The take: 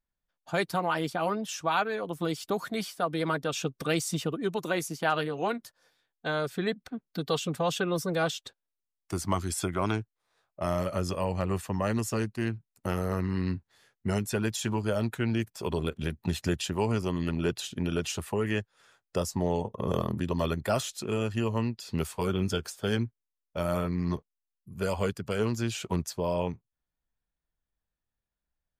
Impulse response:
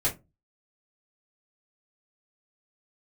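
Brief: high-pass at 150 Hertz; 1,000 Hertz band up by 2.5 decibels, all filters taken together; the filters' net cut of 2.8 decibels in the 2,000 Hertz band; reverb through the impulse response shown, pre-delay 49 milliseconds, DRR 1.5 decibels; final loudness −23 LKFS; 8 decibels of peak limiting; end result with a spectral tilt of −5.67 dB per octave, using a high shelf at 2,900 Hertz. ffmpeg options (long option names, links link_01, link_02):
-filter_complex "[0:a]highpass=150,equalizer=frequency=1000:width_type=o:gain=5,equalizer=frequency=2000:width_type=o:gain=-5.5,highshelf=frequency=2900:gain=-3,alimiter=limit=-21.5dB:level=0:latency=1,asplit=2[link_01][link_02];[1:a]atrim=start_sample=2205,adelay=49[link_03];[link_02][link_03]afir=irnorm=-1:irlink=0,volume=-10dB[link_04];[link_01][link_04]amix=inputs=2:normalize=0,volume=7.5dB"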